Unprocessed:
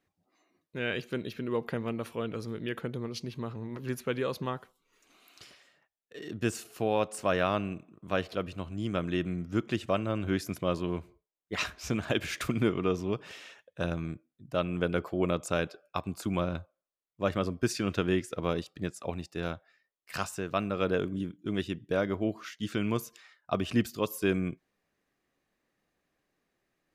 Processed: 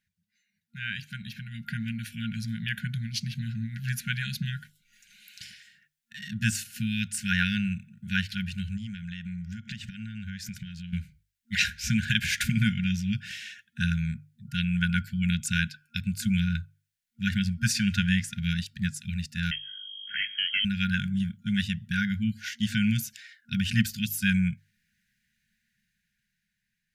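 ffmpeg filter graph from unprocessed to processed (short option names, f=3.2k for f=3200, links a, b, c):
-filter_complex "[0:a]asettb=1/sr,asplit=3[a][b][c];[a]atrim=end=8.774[d];[b]atrim=start=8.77:end=10.93,asetpts=PTS-STARTPTS,afade=t=in:d=0.004:c=qsin,afade=t=out:st=2.156:d=0.004:c=qsin,acompressor=threshold=-38dB:ratio=8:attack=3.2:release=140:knee=1:detection=peak,equalizer=f=11k:t=o:w=0.31:g=-14.5[e];[c]atrim=start=10.926[f];[d][e]acrossfade=d=0.004:c1=hsin:c2=qsin[g];[g][f]acrossfade=d=0.004:c1=qsin:c2=hsin,asettb=1/sr,asplit=3[h][i][j];[h]atrim=end=19.514[k];[i]atrim=start=19.51:end=20.65,asetpts=PTS-STARTPTS,afade=t=in:d=0.004:c=qsin,afade=t=out:st=1.136:d=0.004:c=qsin,aeval=exprs='val(0)+0.00355*(sin(2*PI*50*n/s)+sin(2*PI*2*50*n/s)/2+sin(2*PI*3*50*n/s)/3+sin(2*PI*4*50*n/s)/4+sin(2*PI*5*50*n/s)/5)':c=same,asoftclip=type=hard:threshold=-31dB,lowpass=f=2.8k:t=q:w=0.5098,lowpass=f=2.8k:t=q:w=0.6013,lowpass=f=2.8k:t=q:w=0.9,lowpass=f=2.8k:t=q:w=2.563,afreqshift=-3300[l];[j]atrim=start=20.646[m];[k][l]acrossfade=d=0.004:c1=hsin:c2=qsin[n];[n][m]acrossfade=d=0.004:c1=qsin:c2=hsin,bandreject=f=50:t=h:w=6,bandreject=f=100:t=h:w=6,bandreject=f=150:t=h:w=6,dynaudnorm=f=390:g=9:m=8.5dB,afftfilt=real='re*(1-between(b*sr/4096,230,1400))':imag='im*(1-between(b*sr/4096,230,1400))':win_size=4096:overlap=0.75"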